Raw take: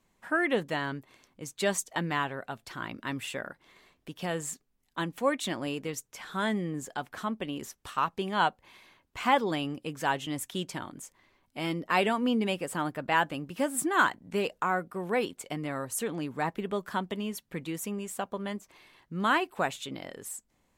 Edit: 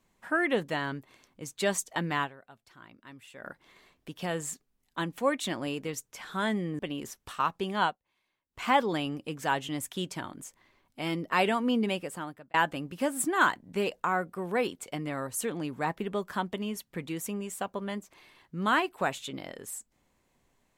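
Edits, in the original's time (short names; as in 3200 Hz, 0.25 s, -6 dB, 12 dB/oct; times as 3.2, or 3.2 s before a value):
2.24–3.46 dip -15 dB, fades 0.40 s exponential
6.79–7.37 cut
8.4–9.21 dip -22 dB, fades 0.15 s
12.45–13.12 fade out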